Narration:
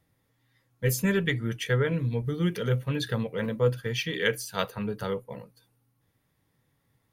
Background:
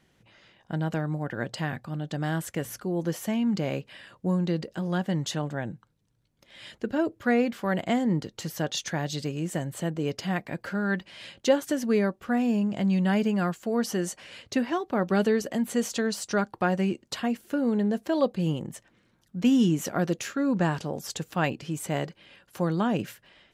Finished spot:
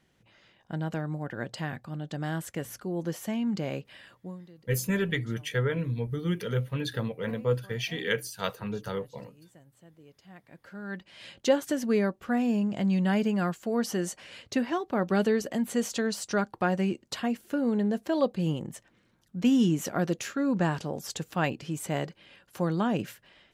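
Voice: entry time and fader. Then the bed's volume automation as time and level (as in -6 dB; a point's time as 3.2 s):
3.85 s, -2.5 dB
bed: 4.1 s -3.5 dB
4.51 s -25.5 dB
10.16 s -25.5 dB
11.33 s -1.5 dB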